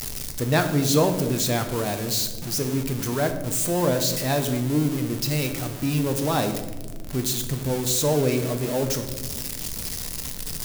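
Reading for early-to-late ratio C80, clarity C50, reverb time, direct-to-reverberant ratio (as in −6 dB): 11.5 dB, 9.5 dB, 1.4 s, 6.0 dB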